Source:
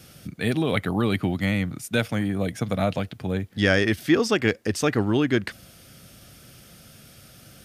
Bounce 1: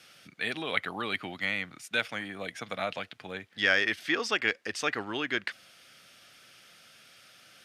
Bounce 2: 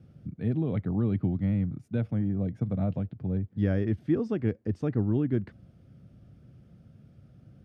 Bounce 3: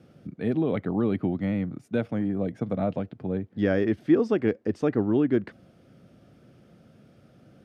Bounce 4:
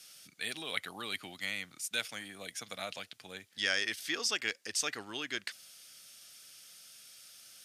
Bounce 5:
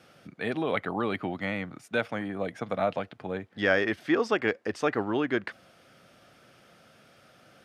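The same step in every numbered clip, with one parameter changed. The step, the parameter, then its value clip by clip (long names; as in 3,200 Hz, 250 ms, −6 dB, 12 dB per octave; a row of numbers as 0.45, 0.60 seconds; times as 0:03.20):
resonant band-pass, frequency: 2,300, 110, 310, 6,400, 910 Hertz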